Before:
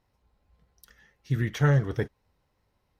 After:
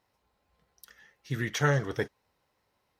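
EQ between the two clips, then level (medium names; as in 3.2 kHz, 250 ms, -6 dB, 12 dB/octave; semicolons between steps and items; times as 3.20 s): high-pass 86 Hz 6 dB/octave; bass shelf 280 Hz -9.5 dB; dynamic bell 6 kHz, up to +5 dB, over -54 dBFS, Q 1.1; +2.5 dB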